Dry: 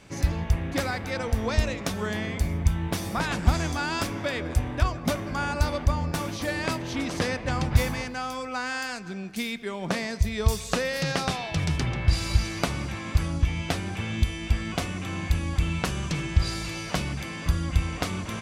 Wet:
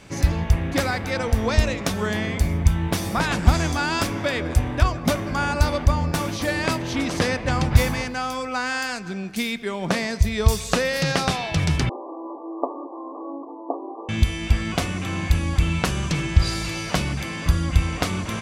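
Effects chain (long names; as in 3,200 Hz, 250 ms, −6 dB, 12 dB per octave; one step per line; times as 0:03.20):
0:11.89–0:14.09: linear-phase brick-wall band-pass 260–1,200 Hz
level +5 dB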